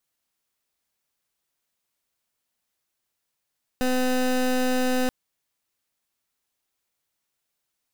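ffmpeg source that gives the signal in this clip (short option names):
-f lavfi -i "aevalsrc='0.075*(2*lt(mod(254*t,1),0.23)-1)':d=1.28:s=44100"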